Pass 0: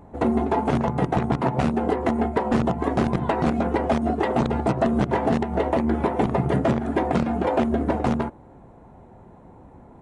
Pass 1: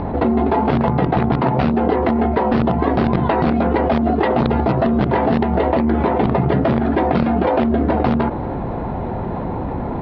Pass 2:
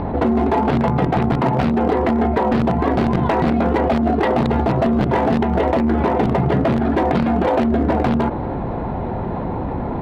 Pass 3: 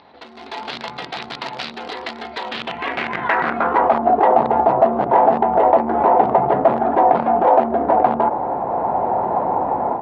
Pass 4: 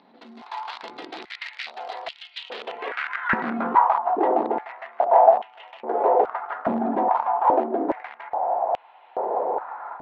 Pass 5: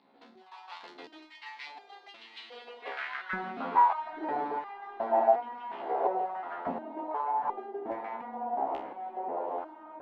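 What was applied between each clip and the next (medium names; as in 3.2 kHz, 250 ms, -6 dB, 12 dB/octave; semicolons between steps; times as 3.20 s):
steep low-pass 4.8 kHz 48 dB/octave; level flattener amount 70%; trim +2.5 dB
hard clipper -10.5 dBFS, distortion -18 dB
band-pass sweep 4.2 kHz -> 790 Hz, 2.35–4.14 s; level rider gain up to 11 dB; trim +1 dB
step-sequenced high-pass 2.4 Hz 220–2900 Hz; trim -10 dB
echo that smears into a reverb 902 ms, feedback 54%, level -8 dB; resonator arpeggio 2.8 Hz 68–400 Hz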